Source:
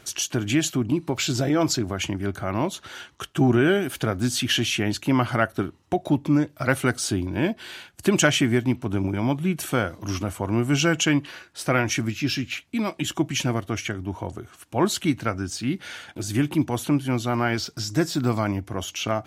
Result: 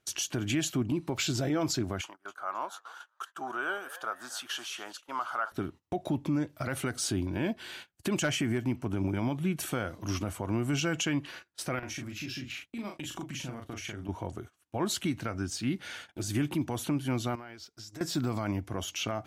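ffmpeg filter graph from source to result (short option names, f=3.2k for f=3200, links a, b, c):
-filter_complex "[0:a]asettb=1/sr,asplit=3[a][b][c];[a]atrim=end=2.014[d];[b]atrim=start=2.01:end=5.52,asetpts=PTS-STARTPTS,afade=t=in:d=0.004:c=qsin,afade=t=out:st=3.506:d=0.004:c=qsin,highpass=990,highshelf=f=1.6k:t=q:w=3:g=-7,asplit=5[e][f][g][h][i];[f]adelay=267,afreqshift=140,volume=-15.5dB[j];[g]adelay=534,afreqshift=280,volume=-23.2dB[k];[h]adelay=801,afreqshift=420,volume=-31dB[l];[i]adelay=1068,afreqshift=560,volume=-38.7dB[m];[e][j][k][l][m]amix=inputs=5:normalize=0,atrim=end_sample=154791[n];[c]atrim=start=5.516[o];[d][n]acrossfade=d=0.004:c1=hsin:c2=qsin[p];[p][o]acrossfade=d=0.004:c1=qsin:c2=hsin,asettb=1/sr,asplit=3[q][r][s];[q]atrim=end=8.224[t];[r]atrim=start=8.22:end=8.94,asetpts=PTS-STARTPTS,afade=t=in:d=0.004:c=qsin,afade=t=out:st=0.716:d=0.004:c=qsin,equalizer=f=3.7k:t=o:w=0.22:g=-9.5,asoftclip=type=hard:threshold=-10.5dB[u];[s]atrim=start=8.936[v];[t][u]acrossfade=d=0.004:c1=hsin:c2=qsin[w];[w][v]acrossfade=d=0.004:c1=qsin:c2=hsin,asettb=1/sr,asplit=3[x][y][z];[x]atrim=end=11.794[aa];[y]atrim=start=11.79:end=14.09,asetpts=PTS-STARTPTS,afade=t=in:d=0.004:c=qsin,afade=t=out:st=2.296:d=0.004:c=qsin,acompressor=threshold=-31dB:ratio=12:attack=3.2:release=140:knee=1:detection=peak,asplit=2[ab][ac];[ac]adelay=39,volume=-4dB[ad];[ab][ad]amix=inputs=2:normalize=0,atrim=end_sample=101430[ae];[z]atrim=start=14.086[af];[aa][ae]acrossfade=d=0.004:c1=hsin:c2=qsin[ag];[ag][af]acrossfade=d=0.004:c1=qsin:c2=hsin,asettb=1/sr,asplit=3[ah][ai][aj];[ah]atrim=end=17.354[ak];[ai]atrim=start=17.35:end=18.01,asetpts=PTS-STARTPTS,afade=t=in:d=0.004:c=qsin,afade=t=out:st=0.656:d=0.004:c=qsin,equalizer=f=150:t=o:w=1:g=-8.5,acompressor=threshold=-36dB:ratio=10:attack=3.2:release=140:knee=1:detection=peak[al];[aj]atrim=start=18.006[am];[ak][al]acrossfade=d=0.004:c1=hsin:c2=qsin[an];[an][am]acrossfade=d=0.004:c1=qsin:c2=hsin,agate=range=-20dB:threshold=-40dB:ratio=16:detection=peak,alimiter=limit=-16.5dB:level=0:latency=1:release=58,volume=-4.5dB"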